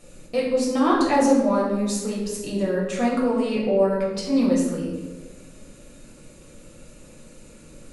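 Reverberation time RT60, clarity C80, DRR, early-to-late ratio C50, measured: 1.3 s, 4.5 dB, −5.0 dB, 2.0 dB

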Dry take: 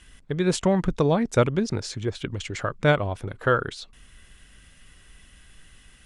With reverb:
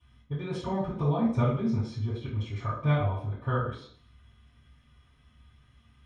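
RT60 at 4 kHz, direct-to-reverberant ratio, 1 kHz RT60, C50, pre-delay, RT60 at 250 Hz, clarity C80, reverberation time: 0.55 s, −21.5 dB, 0.55 s, 4.0 dB, 3 ms, 0.60 s, 7.0 dB, 0.55 s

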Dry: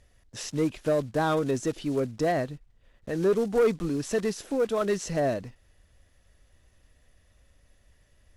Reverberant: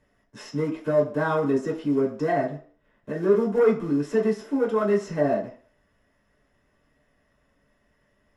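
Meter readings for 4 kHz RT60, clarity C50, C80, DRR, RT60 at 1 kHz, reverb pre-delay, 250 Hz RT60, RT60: 0.45 s, 10.0 dB, 13.5 dB, −4.5 dB, 0.50 s, 3 ms, 0.40 s, 0.50 s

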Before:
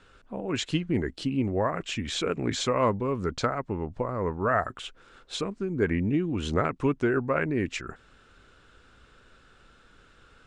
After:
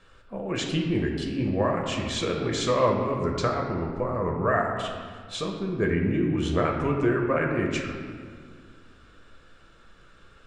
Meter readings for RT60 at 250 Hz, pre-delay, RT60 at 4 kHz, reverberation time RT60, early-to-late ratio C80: 2.5 s, 5 ms, 1.1 s, 1.9 s, 5.0 dB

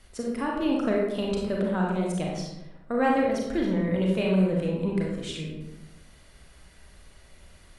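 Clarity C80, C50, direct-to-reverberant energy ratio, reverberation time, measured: 4.0 dB, 0.5 dB, −2.5 dB, 0.95 s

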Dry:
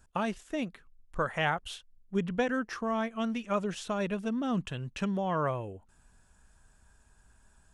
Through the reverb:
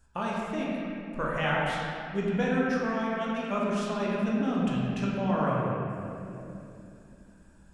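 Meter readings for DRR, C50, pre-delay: −5.5 dB, −2.5 dB, 14 ms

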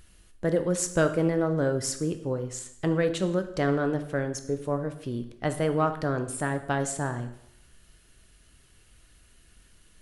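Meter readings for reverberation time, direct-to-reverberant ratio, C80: 0.80 s, 8.0 dB, 14.0 dB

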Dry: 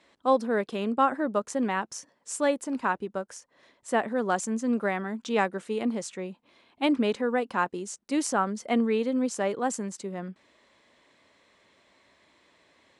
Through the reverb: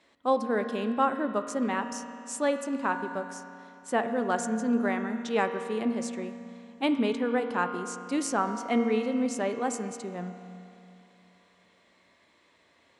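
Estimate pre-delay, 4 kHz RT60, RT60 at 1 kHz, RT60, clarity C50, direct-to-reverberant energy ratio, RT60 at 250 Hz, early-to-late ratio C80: 4 ms, 2.6 s, 2.7 s, 2.7 s, 7.5 dB, 6.5 dB, 2.7 s, 8.5 dB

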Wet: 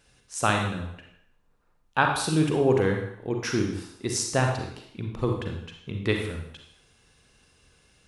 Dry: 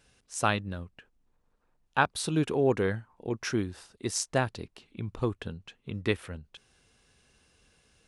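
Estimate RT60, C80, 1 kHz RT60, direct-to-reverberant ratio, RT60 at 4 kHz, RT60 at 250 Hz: 0.65 s, 7.0 dB, 0.70 s, 2.0 dB, 0.70 s, 0.65 s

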